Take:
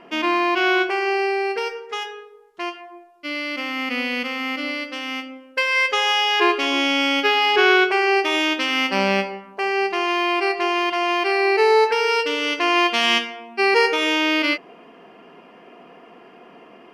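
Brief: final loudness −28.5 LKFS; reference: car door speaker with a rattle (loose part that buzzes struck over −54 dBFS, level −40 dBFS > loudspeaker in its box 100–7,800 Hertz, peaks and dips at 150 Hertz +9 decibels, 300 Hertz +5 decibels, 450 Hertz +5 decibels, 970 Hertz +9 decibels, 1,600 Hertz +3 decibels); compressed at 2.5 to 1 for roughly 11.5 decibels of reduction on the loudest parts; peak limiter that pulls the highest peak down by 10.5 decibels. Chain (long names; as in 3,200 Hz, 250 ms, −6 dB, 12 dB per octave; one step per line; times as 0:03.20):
downward compressor 2.5 to 1, threshold −30 dBFS
brickwall limiter −24.5 dBFS
loose part that buzzes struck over −54 dBFS, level −40 dBFS
loudspeaker in its box 100–7,800 Hz, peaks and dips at 150 Hz +9 dB, 300 Hz +5 dB, 450 Hz +5 dB, 970 Hz +9 dB, 1,600 Hz +3 dB
level +2 dB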